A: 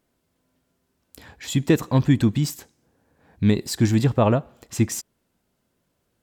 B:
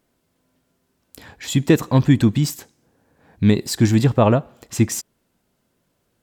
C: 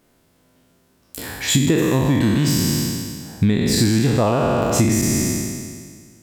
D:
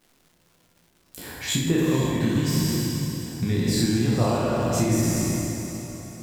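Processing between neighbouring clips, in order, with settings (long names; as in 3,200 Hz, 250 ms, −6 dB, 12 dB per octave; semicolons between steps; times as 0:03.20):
parametric band 67 Hz −7 dB 0.35 octaves; level +3.5 dB
peak hold with a decay on every bin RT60 1.82 s; downward compressor 16 to 1, threshold −19 dBFS, peak gain reduction 13.5 dB; level +6 dB
feedback delay with all-pass diffusion 495 ms, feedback 44%, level −10.5 dB; rectangular room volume 220 cubic metres, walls mixed, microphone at 0.98 metres; surface crackle 380 per second −39 dBFS; level −9 dB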